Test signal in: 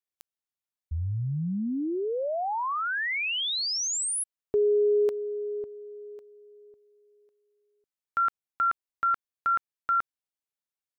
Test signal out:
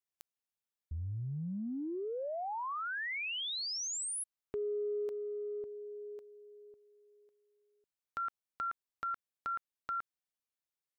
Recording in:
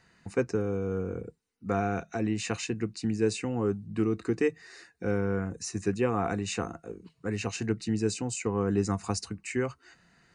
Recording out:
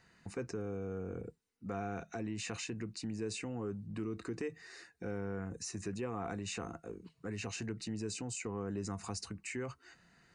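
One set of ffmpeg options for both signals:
ffmpeg -i in.wav -af "acompressor=threshold=-37dB:ratio=2.5:attack=4.4:release=30:knee=1:detection=rms,volume=-3dB" out.wav

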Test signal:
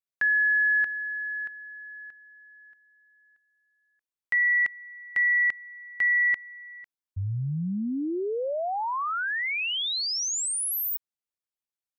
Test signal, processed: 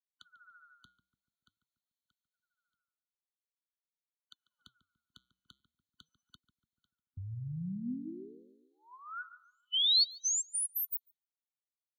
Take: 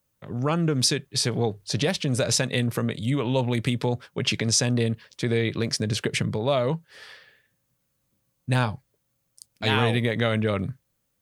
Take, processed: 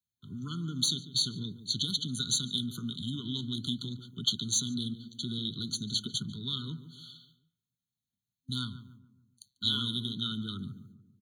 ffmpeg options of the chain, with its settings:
ffmpeg -i in.wav -filter_complex "[0:a]agate=range=-13dB:threshold=-51dB:ratio=3:release=261:detection=peak,acrossover=split=230|420|1500[link_01][link_02][link_03][link_04];[link_01]acompressor=threshold=-37dB:ratio=6:release=156[link_05];[link_05][link_02][link_03][link_04]amix=inputs=4:normalize=0,superequalizer=6b=0.562:9b=3.55,asplit=2[link_06][link_07];[link_07]adelay=144,lowpass=frequency=1100:poles=1,volume=-11dB,asplit=2[link_08][link_09];[link_09]adelay=144,lowpass=frequency=1100:poles=1,volume=0.49,asplit=2[link_10][link_11];[link_11]adelay=144,lowpass=frequency=1100:poles=1,volume=0.49,asplit=2[link_12][link_13];[link_13]adelay=144,lowpass=frequency=1100:poles=1,volume=0.49,asplit=2[link_14][link_15];[link_15]adelay=144,lowpass=frequency=1100:poles=1,volume=0.49[link_16];[link_06][link_08][link_10][link_12][link_14][link_16]amix=inputs=6:normalize=0,acrossover=split=220[link_17][link_18];[link_17]acompressor=threshold=-30dB:ratio=3:attack=52:release=21:knee=2.83:detection=peak[link_19];[link_19][link_18]amix=inputs=2:normalize=0,asuperstop=centerf=690:order=8:qfactor=0.54,equalizer=frequency=4300:width=1.6:gain=9,flanger=delay=1.4:depth=6.7:regen=-87:speed=0.46:shape=sinusoidal,highpass=56,asoftclip=type=tanh:threshold=-10.5dB,afftfilt=real='re*eq(mod(floor(b*sr/1024/1500),2),0)':imag='im*eq(mod(floor(b*sr/1024/1500),2),0)':win_size=1024:overlap=0.75" out.wav

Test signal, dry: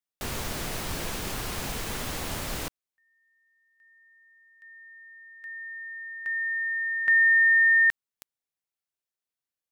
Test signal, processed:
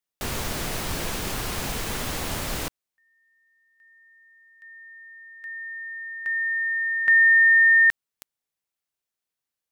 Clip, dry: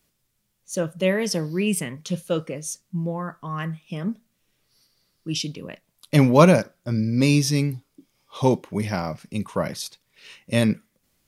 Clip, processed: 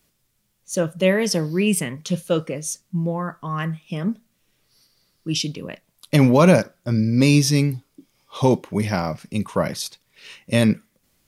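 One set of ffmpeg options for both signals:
ffmpeg -i in.wav -af "alimiter=level_in=7dB:limit=-1dB:release=50:level=0:latency=1,volume=-3.5dB" out.wav

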